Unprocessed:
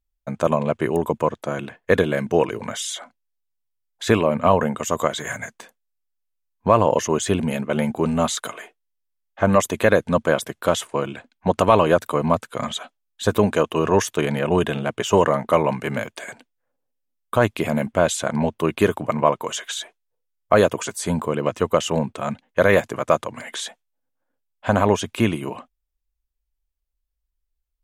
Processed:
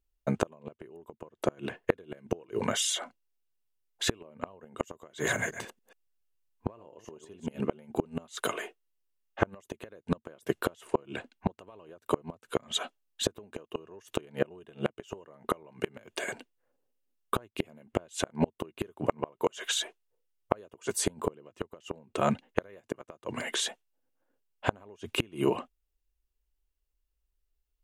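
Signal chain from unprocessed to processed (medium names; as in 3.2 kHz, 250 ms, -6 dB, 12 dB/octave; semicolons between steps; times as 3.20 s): 5.09–7.61 s: chunks repeated in reverse 140 ms, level -9.5 dB; compression 6:1, threshold -17 dBFS, peak gain reduction 8 dB; small resonant body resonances 380/2800 Hz, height 8 dB, ringing for 20 ms; inverted gate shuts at -11 dBFS, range -31 dB; trim -1 dB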